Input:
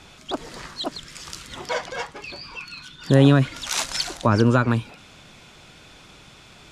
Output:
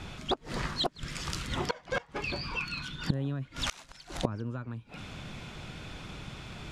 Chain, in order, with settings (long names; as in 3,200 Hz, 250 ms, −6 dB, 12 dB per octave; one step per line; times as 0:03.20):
bass and treble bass +7 dB, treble −6 dB
gate with flip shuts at −19 dBFS, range −26 dB
level +2.5 dB